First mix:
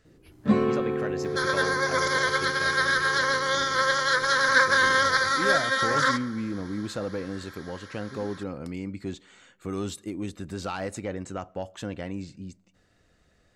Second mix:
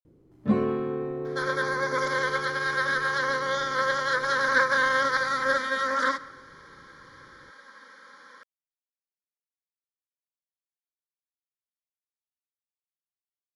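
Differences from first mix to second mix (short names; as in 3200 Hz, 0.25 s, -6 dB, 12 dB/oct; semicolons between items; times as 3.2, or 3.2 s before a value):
speech: muted; first sound: send -9.0 dB; master: add high shelf 2800 Hz -10 dB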